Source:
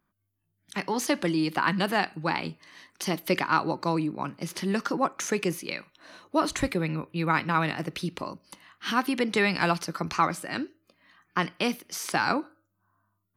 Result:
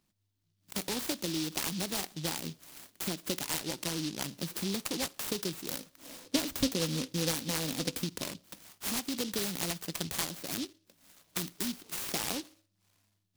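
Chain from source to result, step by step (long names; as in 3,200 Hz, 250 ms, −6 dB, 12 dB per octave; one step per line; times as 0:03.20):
0:11.02–0:11.97: healed spectral selection 420–1,200 Hz
downward compressor 4 to 1, threshold −32 dBFS, peak gain reduction 12.5 dB
0:05.72–0:08.03: hollow resonant body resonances 260/500 Hz, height 10 dB → 13 dB, ringing for 75 ms
short delay modulated by noise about 4,100 Hz, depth 0.26 ms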